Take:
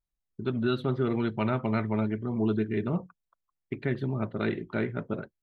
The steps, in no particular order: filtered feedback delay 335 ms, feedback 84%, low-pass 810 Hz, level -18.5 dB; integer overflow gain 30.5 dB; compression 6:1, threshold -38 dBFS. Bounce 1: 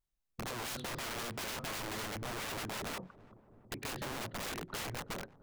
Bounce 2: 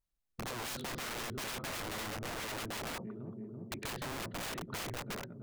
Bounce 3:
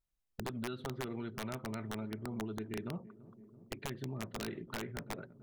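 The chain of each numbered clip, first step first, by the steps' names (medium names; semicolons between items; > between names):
integer overflow > compression > filtered feedback delay; filtered feedback delay > integer overflow > compression; compression > filtered feedback delay > integer overflow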